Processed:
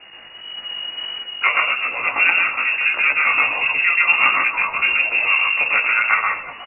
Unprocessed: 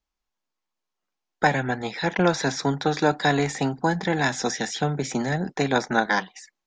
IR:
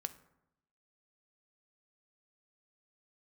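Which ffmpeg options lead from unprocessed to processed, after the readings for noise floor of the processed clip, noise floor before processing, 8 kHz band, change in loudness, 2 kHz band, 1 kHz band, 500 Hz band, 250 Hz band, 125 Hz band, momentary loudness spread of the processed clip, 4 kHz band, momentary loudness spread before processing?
-40 dBFS, -84 dBFS, under -40 dB, +8.0 dB, +13.0 dB, +3.0 dB, -10.5 dB, under -15 dB, under -20 dB, 13 LU, +8.5 dB, 5 LU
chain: -filter_complex "[0:a]aeval=exprs='val(0)+0.5*0.0282*sgn(val(0))':c=same,dynaudnorm=f=310:g=3:m=2.66,aecho=1:1:363:0.0841,asplit=2[s0][s1];[1:a]atrim=start_sample=2205,highshelf=f=3900:g=8.5,adelay=130[s2];[s1][s2]afir=irnorm=-1:irlink=0,volume=1[s3];[s0][s3]amix=inputs=2:normalize=0,lowpass=f=2500:t=q:w=0.5098,lowpass=f=2500:t=q:w=0.6013,lowpass=f=2500:t=q:w=0.9,lowpass=f=2500:t=q:w=2.563,afreqshift=-2900,flanger=delay=15:depth=3.5:speed=1.6"

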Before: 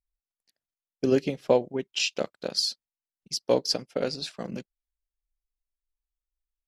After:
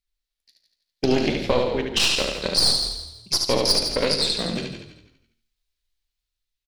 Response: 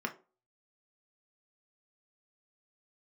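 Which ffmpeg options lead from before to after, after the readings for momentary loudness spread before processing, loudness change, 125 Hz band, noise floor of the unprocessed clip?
11 LU, +6.5 dB, +7.0 dB, under -85 dBFS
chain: -filter_complex "[0:a]dynaudnorm=f=180:g=9:m=1.68,flanger=delay=5:depth=8.2:regen=57:speed=1.2:shape=sinusoidal,equalizer=f=1000:t=o:w=1:g=-4,equalizer=f=2000:t=o:w=1:g=4,equalizer=f=4000:t=o:w=1:g=11,asplit=2[s0][s1];[s1]aecho=0:1:73|146|219|292:0.596|0.203|0.0689|0.0234[s2];[s0][s2]amix=inputs=2:normalize=0,aeval=exprs='0.668*(cos(1*acos(clip(val(0)/0.668,-1,1)))-cos(1*PI/2))+0.0944*(cos(6*acos(clip(val(0)/0.668,-1,1)))-cos(6*PI/2))':c=same,asplit=2[s3][s4];[s4]adelay=39,volume=0.211[s5];[s3][s5]amix=inputs=2:normalize=0,alimiter=limit=0.224:level=0:latency=1:release=230,asplit=2[s6][s7];[s7]asplit=4[s8][s9][s10][s11];[s8]adelay=165,afreqshift=-38,volume=0.335[s12];[s9]adelay=330,afreqshift=-76,volume=0.107[s13];[s10]adelay=495,afreqshift=-114,volume=0.0343[s14];[s11]adelay=660,afreqshift=-152,volume=0.011[s15];[s12][s13][s14][s15]amix=inputs=4:normalize=0[s16];[s6][s16]amix=inputs=2:normalize=0,volume=1.88"

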